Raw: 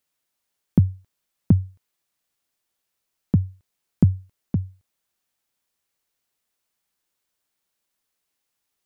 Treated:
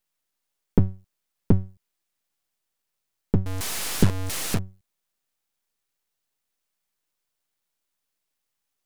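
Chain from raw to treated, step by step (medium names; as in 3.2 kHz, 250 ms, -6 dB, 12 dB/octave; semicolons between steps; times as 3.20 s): 3.46–4.59 s: one-bit delta coder 64 kbps, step -19.5 dBFS; half-wave rectifier; trim +1.5 dB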